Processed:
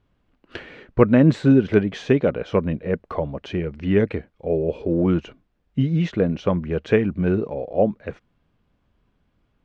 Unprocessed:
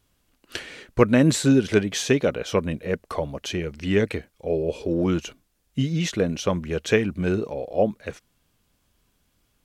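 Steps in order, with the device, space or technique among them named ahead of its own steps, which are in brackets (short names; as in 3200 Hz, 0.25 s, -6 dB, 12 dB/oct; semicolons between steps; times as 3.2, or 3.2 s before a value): phone in a pocket (LPF 3300 Hz 12 dB/oct; bell 170 Hz +2 dB; high shelf 2300 Hz -10 dB); gain +2.5 dB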